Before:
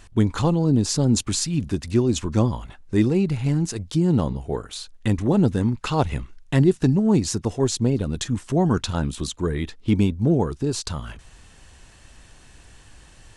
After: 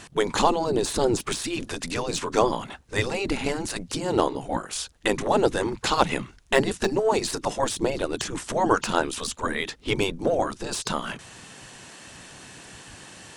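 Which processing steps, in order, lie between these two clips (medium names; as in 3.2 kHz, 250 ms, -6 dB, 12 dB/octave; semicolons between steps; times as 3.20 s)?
spectral gate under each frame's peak -10 dB weak; de-esser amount 70%; trim +8.5 dB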